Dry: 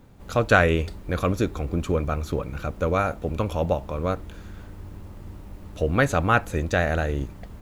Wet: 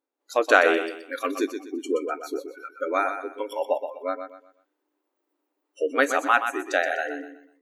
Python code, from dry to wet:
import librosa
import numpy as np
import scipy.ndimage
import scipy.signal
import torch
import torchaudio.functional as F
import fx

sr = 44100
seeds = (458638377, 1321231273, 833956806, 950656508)

p1 = fx.noise_reduce_blind(x, sr, reduce_db=30)
p2 = fx.brickwall_highpass(p1, sr, low_hz=260.0)
p3 = p2 + fx.echo_feedback(p2, sr, ms=124, feedback_pct=32, wet_db=-8.5, dry=0)
y = p3 * 10.0 ** (1.0 / 20.0)